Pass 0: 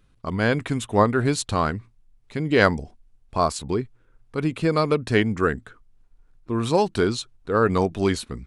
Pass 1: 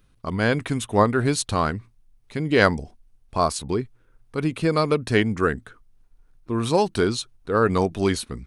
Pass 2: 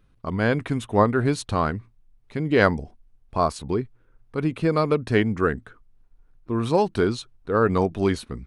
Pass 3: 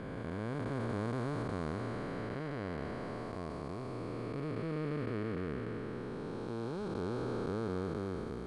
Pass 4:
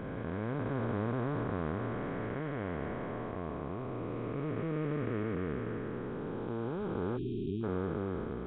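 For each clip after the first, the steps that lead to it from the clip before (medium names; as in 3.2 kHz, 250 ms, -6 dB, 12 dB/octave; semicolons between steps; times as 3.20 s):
treble shelf 8 kHz +7.5 dB; band-stop 7.4 kHz, Q 11
treble shelf 3.7 kHz -11 dB
spectral blur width 1390 ms; trim -7.5 dB
spectral selection erased 7.17–7.63 s, 420–2400 Hz; trim +2.5 dB; Nellymoser 16 kbps 8 kHz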